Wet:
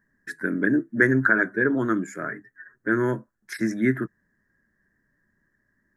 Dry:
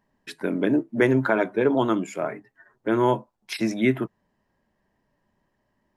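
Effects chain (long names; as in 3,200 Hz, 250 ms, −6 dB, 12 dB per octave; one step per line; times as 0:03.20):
drawn EQ curve 320 Hz 0 dB, 870 Hz −15 dB, 1,700 Hz +13 dB, 2,700 Hz −21 dB, 6,400 Hz −1 dB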